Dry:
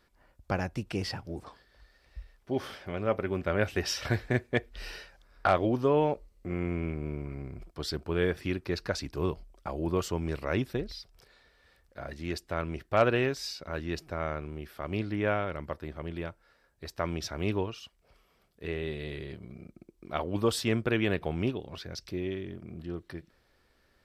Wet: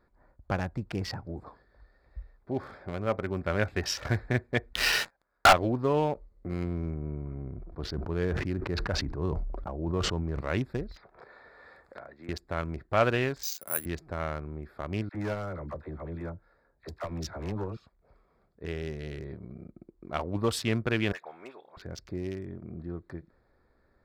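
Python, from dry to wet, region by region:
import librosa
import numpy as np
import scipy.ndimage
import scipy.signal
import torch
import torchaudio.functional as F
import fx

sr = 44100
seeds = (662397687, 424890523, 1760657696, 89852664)

y = fx.chain(x, sr, fx.lowpass(hz=1500.0, slope=6),
    fx.tilt_eq(slope=4.0),
    fx.leveller(passes=5), at=(4.73, 5.53))
y = fx.chain(y, sr, fx.spacing_loss(db_at_10k=29),
    fx.sustainer(db_per_s=32.0), at=(6.64, 10.41))
y = fx.chain(y, sr, fx.highpass(hz=750.0, slope=6),
    fx.env_lowpass_down(base_hz=1800.0, full_db=-41.0),
    fx.band_squash(depth_pct=100), at=(10.96, 12.29))
y = fx.chain(y, sr, fx.highpass(hz=480.0, slope=6),
    fx.resample_bad(factor=4, down='filtered', up='zero_stuff'),
    fx.band_widen(depth_pct=40), at=(13.43, 13.86))
y = fx.chain(y, sr, fx.clip_hard(threshold_db=-24.5),
    fx.dispersion(late='lows', ms=57.0, hz=610.0),
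    fx.transformer_sat(knee_hz=290.0), at=(15.09, 17.77))
y = fx.chain(y, sr, fx.highpass(hz=980.0, slope=12),
    fx.clip_hard(threshold_db=-29.5),
    fx.dispersion(late='highs', ms=49.0, hz=2500.0), at=(21.12, 21.77))
y = fx.wiener(y, sr, points=15)
y = fx.dynamic_eq(y, sr, hz=390.0, q=0.82, threshold_db=-41.0, ratio=4.0, max_db=-4)
y = F.gain(torch.from_numpy(y), 2.0).numpy()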